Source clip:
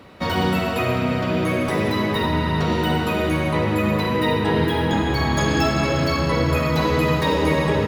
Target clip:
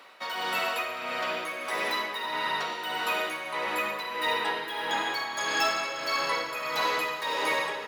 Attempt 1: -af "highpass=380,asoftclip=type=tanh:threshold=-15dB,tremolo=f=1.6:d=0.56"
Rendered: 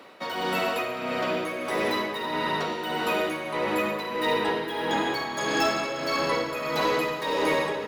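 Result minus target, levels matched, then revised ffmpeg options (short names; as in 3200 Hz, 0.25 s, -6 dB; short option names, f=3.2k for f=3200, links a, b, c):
500 Hz band +5.5 dB
-af "highpass=860,asoftclip=type=tanh:threshold=-15dB,tremolo=f=1.6:d=0.56"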